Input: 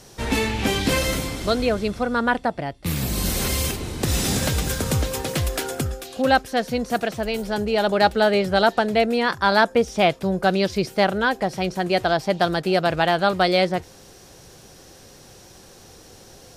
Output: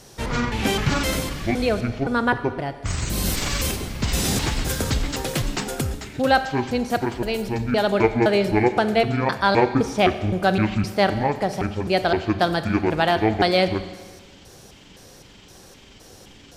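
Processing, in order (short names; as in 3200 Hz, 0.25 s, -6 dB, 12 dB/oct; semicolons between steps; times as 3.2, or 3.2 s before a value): trilling pitch shifter -10.5 st, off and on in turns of 0.258 s; Schroeder reverb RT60 1.4 s, combs from 29 ms, DRR 10.5 dB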